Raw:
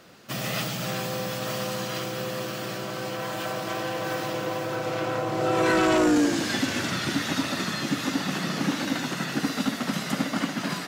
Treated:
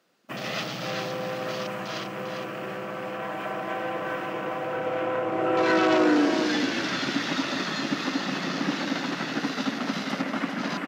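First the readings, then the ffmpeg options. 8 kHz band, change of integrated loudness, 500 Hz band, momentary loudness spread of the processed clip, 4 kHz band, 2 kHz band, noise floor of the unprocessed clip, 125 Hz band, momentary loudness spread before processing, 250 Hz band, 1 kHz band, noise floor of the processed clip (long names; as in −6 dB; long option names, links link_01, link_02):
−7.5 dB, −0.5 dB, +0.5 dB, 12 LU, −1.5 dB, +0.5 dB, −34 dBFS, −6.0 dB, 10 LU, −0.5 dB, +0.5 dB, −35 dBFS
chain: -af "highpass=210,afwtdn=0.0141,aecho=1:1:399:0.447"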